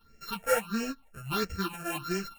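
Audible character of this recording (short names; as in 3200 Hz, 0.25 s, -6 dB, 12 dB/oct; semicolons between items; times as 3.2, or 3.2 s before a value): a buzz of ramps at a fixed pitch in blocks of 32 samples; phasing stages 6, 1.5 Hz, lowest notch 260–1000 Hz; tremolo saw up 3.3 Hz, depth 30%; a shimmering, thickened sound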